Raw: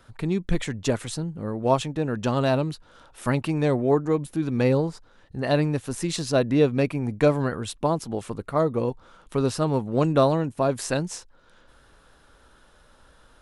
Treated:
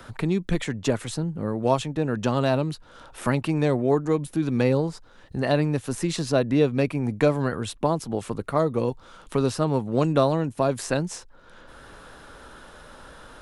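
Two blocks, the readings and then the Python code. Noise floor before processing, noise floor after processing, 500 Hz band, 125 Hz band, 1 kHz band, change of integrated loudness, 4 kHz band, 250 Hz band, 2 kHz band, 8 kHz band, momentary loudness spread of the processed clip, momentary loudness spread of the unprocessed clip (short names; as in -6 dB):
-56 dBFS, -50 dBFS, -0.5 dB, 0.0 dB, 0.0 dB, 0.0 dB, -0.5 dB, +0.5 dB, +0.5 dB, -1.0 dB, 8 LU, 10 LU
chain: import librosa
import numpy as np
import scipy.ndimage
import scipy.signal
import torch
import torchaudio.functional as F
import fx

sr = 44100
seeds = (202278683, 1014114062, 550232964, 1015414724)

y = fx.band_squash(x, sr, depth_pct=40)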